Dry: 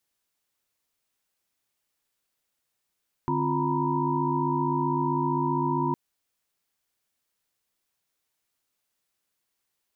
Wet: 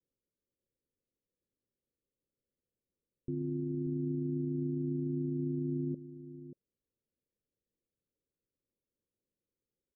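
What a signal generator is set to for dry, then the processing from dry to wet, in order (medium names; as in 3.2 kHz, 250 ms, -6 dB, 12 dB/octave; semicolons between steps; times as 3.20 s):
chord D3/C4/F4/A#5/B5 sine, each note -29.5 dBFS 2.66 s
steep low-pass 570 Hz 96 dB/octave; peak limiter -29 dBFS; delay 585 ms -12.5 dB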